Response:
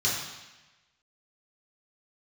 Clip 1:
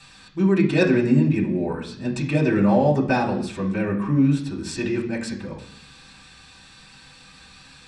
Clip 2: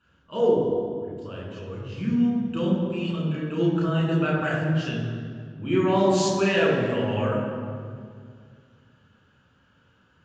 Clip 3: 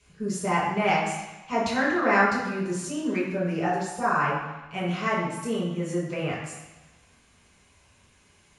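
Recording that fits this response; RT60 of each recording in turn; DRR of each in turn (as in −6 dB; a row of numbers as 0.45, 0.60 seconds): 3; 0.65, 2.1, 1.1 seconds; −5.5, −5.0, −7.0 decibels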